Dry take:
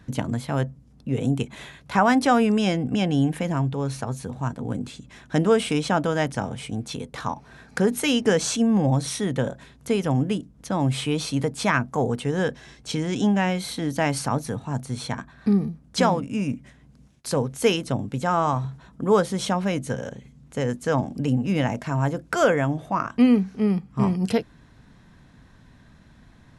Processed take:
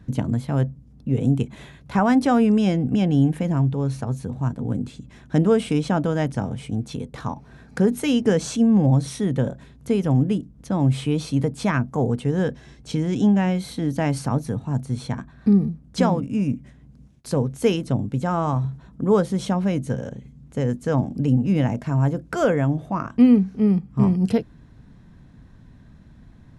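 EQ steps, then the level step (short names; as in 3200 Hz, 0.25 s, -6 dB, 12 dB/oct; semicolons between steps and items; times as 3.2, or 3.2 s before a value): low shelf 480 Hz +11 dB; -5.5 dB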